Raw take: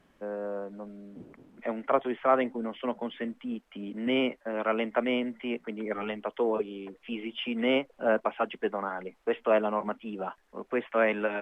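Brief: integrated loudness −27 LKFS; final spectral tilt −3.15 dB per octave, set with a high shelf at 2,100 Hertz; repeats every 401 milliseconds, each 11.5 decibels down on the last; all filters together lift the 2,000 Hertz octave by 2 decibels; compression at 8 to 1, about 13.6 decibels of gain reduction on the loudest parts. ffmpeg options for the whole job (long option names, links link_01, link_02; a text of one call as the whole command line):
ffmpeg -i in.wav -af "equalizer=frequency=2000:width_type=o:gain=6,highshelf=frequency=2100:gain=-6,acompressor=threshold=-33dB:ratio=8,aecho=1:1:401|802|1203:0.266|0.0718|0.0194,volume=11.5dB" out.wav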